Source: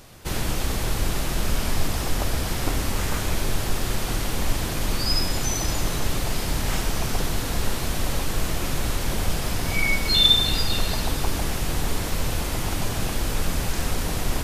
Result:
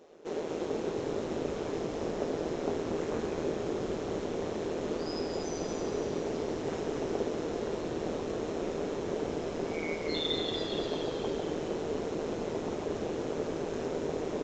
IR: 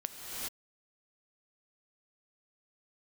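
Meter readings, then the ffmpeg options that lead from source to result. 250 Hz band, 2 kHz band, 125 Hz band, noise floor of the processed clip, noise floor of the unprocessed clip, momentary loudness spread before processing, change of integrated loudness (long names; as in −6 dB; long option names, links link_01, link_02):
−3.5 dB, −14.5 dB, −15.5 dB, −37 dBFS, −28 dBFS, 5 LU, −9.0 dB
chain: -filter_complex "[0:a]highpass=frequency=420:width_type=q:width=4.9,tiltshelf=frequency=940:gain=6.5,bandreject=frequency=4700:width=12,tremolo=f=160:d=0.71,asplit=2[link_01][link_02];[link_02]adelay=20,volume=-12.5dB[link_03];[link_01][link_03]amix=inputs=2:normalize=0,asplit=2[link_04][link_05];[link_05]asplit=8[link_06][link_07][link_08][link_09][link_10][link_11][link_12][link_13];[link_06]adelay=236,afreqshift=-90,volume=-5.5dB[link_14];[link_07]adelay=472,afreqshift=-180,volume=-10.1dB[link_15];[link_08]adelay=708,afreqshift=-270,volume=-14.7dB[link_16];[link_09]adelay=944,afreqshift=-360,volume=-19.2dB[link_17];[link_10]adelay=1180,afreqshift=-450,volume=-23.8dB[link_18];[link_11]adelay=1416,afreqshift=-540,volume=-28.4dB[link_19];[link_12]adelay=1652,afreqshift=-630,volume=-33dB[link_20];[link_13]adelay=1888,afreqshift=-720,volume=-37.6dB[link_21];[link_14][link_15][link_16][link_17][link_18][link_19][link_20][link_21]amix=inputs=8:normalize=0[link_22];[link_04][link_22]amix=inputs=2:normalize=0,aresample=16000,aresample=44100,volume=-9dB"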